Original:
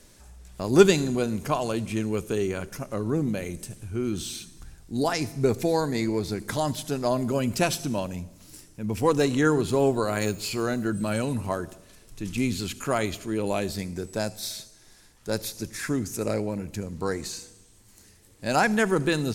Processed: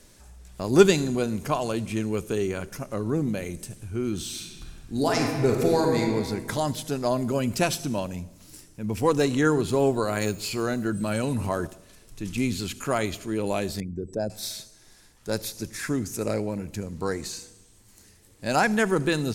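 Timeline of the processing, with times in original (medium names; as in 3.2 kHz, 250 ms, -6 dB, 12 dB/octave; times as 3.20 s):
4.27–6.01 s: reverb throw, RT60 1.8 s, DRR 1 dB
11.23–11.67 s: level flattener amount 50%
13.80–14.30 s: resonances exaggerated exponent 2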